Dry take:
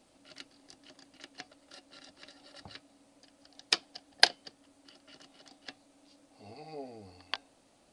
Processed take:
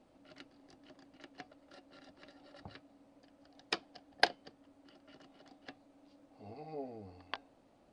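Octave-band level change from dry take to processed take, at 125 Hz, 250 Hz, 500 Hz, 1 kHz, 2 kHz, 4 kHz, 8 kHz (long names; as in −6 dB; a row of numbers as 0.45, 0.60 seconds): can't be measured, +0.5 dB, 0.0 dB, −1.0 dB, −4.5 dB, −11.0 dB, −14.5 dB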